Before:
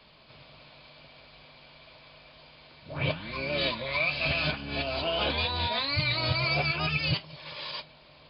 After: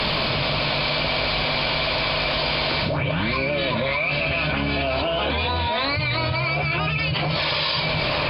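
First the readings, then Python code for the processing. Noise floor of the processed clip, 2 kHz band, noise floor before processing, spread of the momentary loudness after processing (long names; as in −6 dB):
−24 dBFS, +8.5 dB, −55 dBFS, 1 LU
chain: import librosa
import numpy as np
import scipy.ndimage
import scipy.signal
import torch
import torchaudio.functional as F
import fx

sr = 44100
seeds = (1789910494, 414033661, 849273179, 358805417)

p1 = fx.env_lowpass_down(x, sr, base_hz=3000.0, full_db=-28.5)
p2 = fx.rider(p1, sr, range_db=10, speed_s=0.5)
p3 = p2 + fx.echo_alternate(p2, sr, ms=658, hz=2000.0, feedback_pct=52, wet_db=-13, dry=0)
y = fx.env_flatten(p3, sr, amount_pct=100)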